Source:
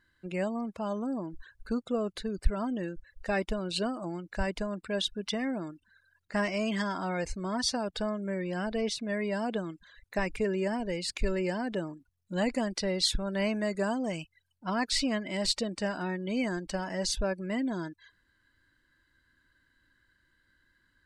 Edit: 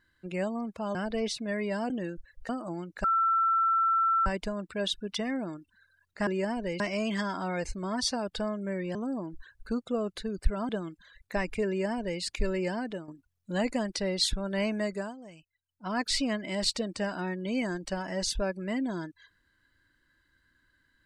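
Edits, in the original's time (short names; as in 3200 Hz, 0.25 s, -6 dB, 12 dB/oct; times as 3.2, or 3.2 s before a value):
0.95–2.69 swap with 8.56–9.51
3.28–3.85 cut
4.4 add tone 1340 Hz -22 dBFS 1.22 s
10.5–11.03 copy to 6.41
11.61–11.9 fade out, to -11 dB
13.67–14.81 dip -15 dB, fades 0.31 s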